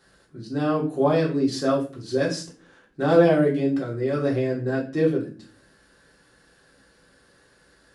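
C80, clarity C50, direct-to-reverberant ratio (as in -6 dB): 14.5 dB, 9.0 dB, -4.5 dB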